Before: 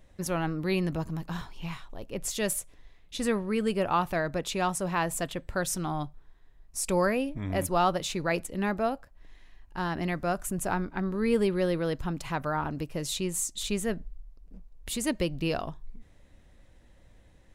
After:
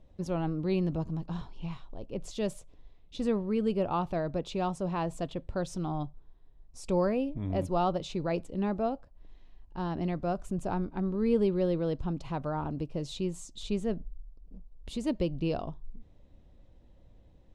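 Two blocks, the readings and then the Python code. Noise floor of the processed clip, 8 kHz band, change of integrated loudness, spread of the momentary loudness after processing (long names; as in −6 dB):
−58 dBFS, −16.0 dB, −2.0 dB, 12 LU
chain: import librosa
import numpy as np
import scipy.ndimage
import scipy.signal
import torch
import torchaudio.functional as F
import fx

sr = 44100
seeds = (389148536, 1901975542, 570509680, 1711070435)

y = scipy.signal.sosfilt(scipy.signal.butter(2, 3500.0, 'lowpass', fs=sr, output='sos'), x)
y = fx.peak_eq(y, sr, hz=1800.0, db=-14.0, octaves=1.3)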